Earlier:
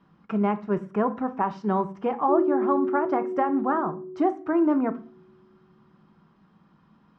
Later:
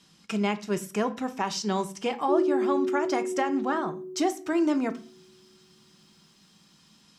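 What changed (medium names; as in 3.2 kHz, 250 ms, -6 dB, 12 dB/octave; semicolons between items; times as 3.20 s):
speech: add bass shelf 360 Hz -4 dB; master: remove resonant low-pass 1.2 kHz, resonance Q 1.6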